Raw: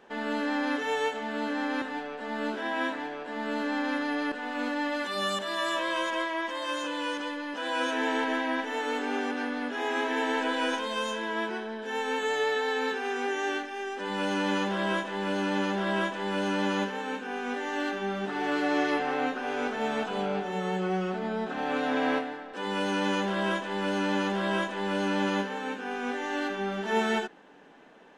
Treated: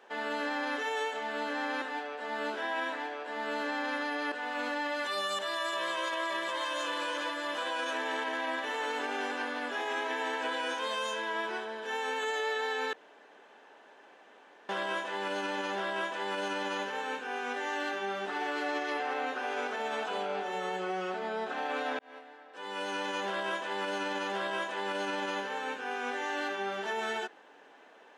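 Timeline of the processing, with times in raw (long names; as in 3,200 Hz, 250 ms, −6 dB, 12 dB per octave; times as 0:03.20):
0:05.15–0:06.16: delay throw 570 ms, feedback 80%, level −6.5 dB
0:12.93–0:14.69: fill with room tone
0:21.99–0:23.39: fade in
whole clip: high-pass filter 440 Hz 12 dB per octave; brickwall limiter −25 dBFS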